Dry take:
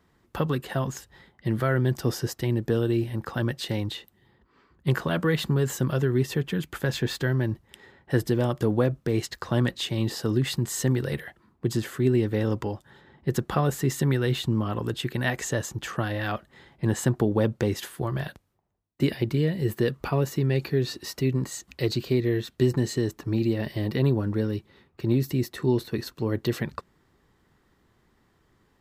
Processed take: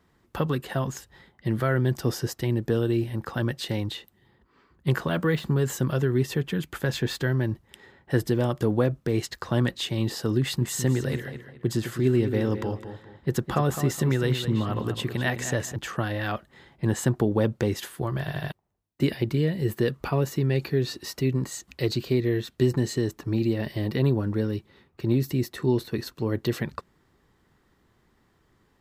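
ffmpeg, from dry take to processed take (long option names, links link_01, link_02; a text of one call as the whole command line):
ffmpeg -i in.wav -filter_complex "[0:a]asettb=1/sr,asplit=3[link_01][link_02][link_03];[link_01]atrim=end=4.994[link_04];[link_02]atrim=start=4.99:end=5.66,asetpts=PTS-STARTPTS,afade=type=in:duration=0.004:curve=qsin,afade=type=out:start_time=0.666:duration=0.004:curve=qsin,deesser=0.9[link_05];[link_03]atrim=start=5.656[link_06];[link_04][link_05]acrossfade=duration=0.004:curve1=hsin:curve2=qsin[link_07];[link_07][link_06]acrossfade=duration=0.004:curve1=qsin:curve2=hsin,asettb=1/sr,asplit=3[link_08][link_09][link_10];[link_08]atrim=end=10.404[link_11];[link_09]atrim=start=10.4:end=15.76,asetpts=PTS-STARTPTS,afade=type=in:duration=0.004:curve=qsin,afade=type=out:start_time=5.356:duration=0.004:curve=qsin,asplit=2[link_12][link_13];[link_13]adelay=209,lowpass=frequency=4800:poles=1,volume=-9.5dB,asplit=2[link_14][link_15];[link_15]adelay=209,lowpass=frequency=4800:poles=1,volume=0.31,asplit=2[link_16][link_17];[link_17]adelay=209,lowpass=frequency=4800:poles=1,volume=0.31[link_18];[link_12][link_14][link_16][link_18]amix=inputs=4:normalize=0,atrim=end_sample=236376[link_19];[link_10]atrim=start=15.756[link_20];[link_11][link_19]acrossfade=duration=0.004:curve1=hsin:curve2=qsin[link_21];[link_21][link_20]acrossfade=duration=0.004:curve1=qsin:curve2=hsin,asplit=5[link_22][link_23][link_24][link_25][link_26];[link_22]atrim=end=18.282[link_27];[link_23]atrim=start=18.198:end=18.282[link_28];[link_24]atrim=start=18.198:end=18.282[link_29];[link_25]atrim=start=18.198:end=18.282[link_30];[link_26]atrim=start=18.518[link_31];[link_27][link_28]acrossfade=duration=0.004:curve1=hsin:curve2=hsin[link_32];[link_32][link_29]acrossfade=duration=0.004:curve1=hsin:curve2=hsin[link_33];[link_33][link_30]acrossfade=duration=0.004:curve1=hsin:curve2=hsin[link_34];[link_34][link_31]acrossfade=duration=0.004:curve1=hsin:curve2=hsin" out.wav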